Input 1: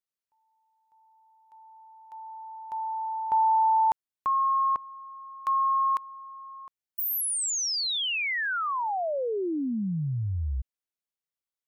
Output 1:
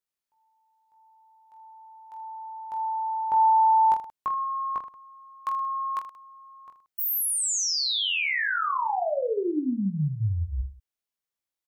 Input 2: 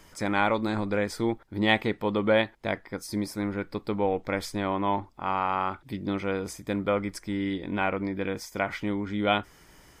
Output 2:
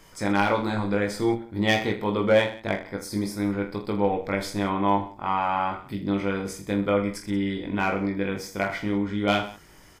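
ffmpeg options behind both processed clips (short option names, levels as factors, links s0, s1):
-af "asoftclip=type=hard:threshold=0.178,aecho=1:1:20|46|79.8|123.7|180.9:0.631|0.398|0.251|0.158|0.1"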